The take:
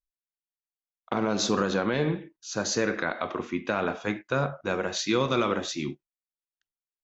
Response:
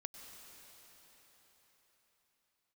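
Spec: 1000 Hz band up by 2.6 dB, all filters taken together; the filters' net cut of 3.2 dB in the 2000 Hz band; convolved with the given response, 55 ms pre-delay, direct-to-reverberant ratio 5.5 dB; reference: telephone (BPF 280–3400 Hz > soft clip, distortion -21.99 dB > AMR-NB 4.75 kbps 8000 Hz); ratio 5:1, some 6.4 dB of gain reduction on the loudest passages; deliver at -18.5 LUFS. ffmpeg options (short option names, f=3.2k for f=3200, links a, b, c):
-filter_complex "[0:a]equalizer=f=1k:t=o:g=6,equalizer=f=2k:t=o:g=-7.5,acompressor=threshold=-27dB:ratio=5,asplit=2[a][b];[1:a]atrim=start_sample=2205,adelay=55[c];[b][c]afir=irnorm=-1:irlink=0,volume=-2dB[d];[a][d]amix=inputs=2:normalize=0,highpass=280,lowpass=3.4k,asoftclip=threshold=-19.5dB,volume=19dB" -ar 8000 -c:a libopencore_amrnb -b:a 4750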